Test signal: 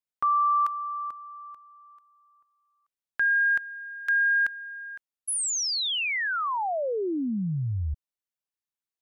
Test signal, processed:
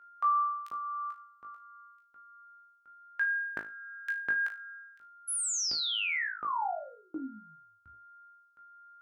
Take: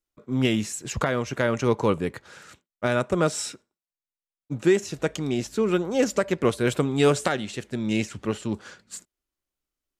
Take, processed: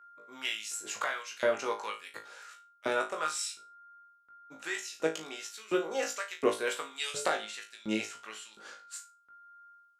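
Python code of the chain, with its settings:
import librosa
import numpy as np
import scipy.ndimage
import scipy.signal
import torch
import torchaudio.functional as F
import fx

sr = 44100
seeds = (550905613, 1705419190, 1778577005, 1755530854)

y = x + 10.0 ** (-49.0 / 20.0) * np.sin(2.0 * np.pi * 1400.0 * np.arange(len(x)) / sr)
y = fx.filter_lfo_highpass(y, sr, shape='saw_up', hz=1.4, low_hz=300.0, high_hz=3600.0, q=0.97)
y = fx.room_flutter(y, sr, wall_m=3.2, rt60_s=0.27)
y = F.gain(torch.from_numpy(y), -6.5).numpy()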